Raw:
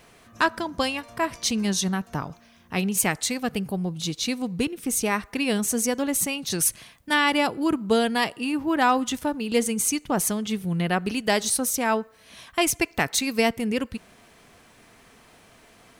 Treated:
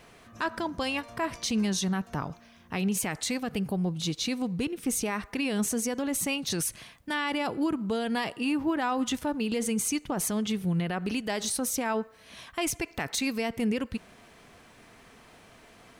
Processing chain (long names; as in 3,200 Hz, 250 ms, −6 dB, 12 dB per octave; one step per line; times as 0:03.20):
high-shelf EQ 6,300 Hz −5.5 dB
brickwall limiter −20 dBFS, peak gain reduction 10 dB